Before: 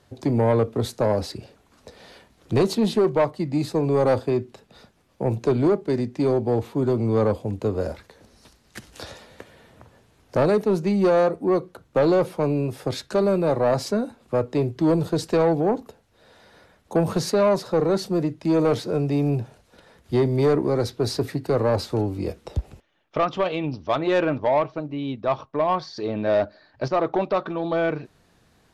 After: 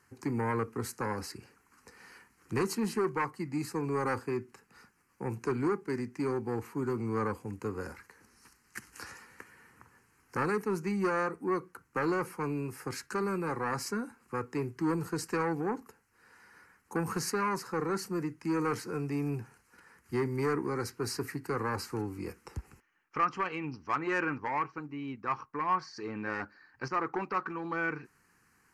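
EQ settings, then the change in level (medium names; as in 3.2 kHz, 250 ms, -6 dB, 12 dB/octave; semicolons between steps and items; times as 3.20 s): bass shelf 130 Hz -7.5 dB; bass shelf 410 Hz -9 dB; static phaser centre 1.5 kHz, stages 4; 0.0 dB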